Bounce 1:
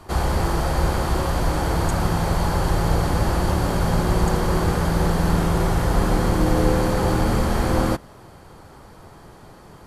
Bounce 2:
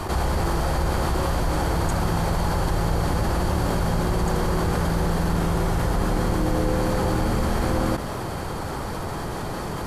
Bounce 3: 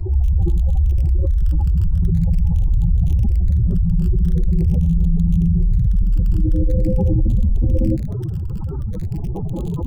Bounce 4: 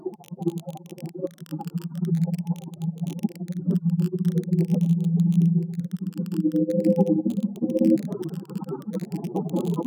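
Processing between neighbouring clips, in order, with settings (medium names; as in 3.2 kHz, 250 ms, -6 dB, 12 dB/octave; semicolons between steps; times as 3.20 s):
level flattener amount 70%; trim -6 dB
spectral contrast enhancement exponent 3.9; crackle 26 per s -31 dBFS; phase shifter stages 12, 0.44 Hz, lowest notch 660–1800 Hz; trim +7 dB
wow and flutter 18 cents; brick-wall FIR high-pass 160 Hz; trim +3 dB; Vorbis 128 kbps 48 kHz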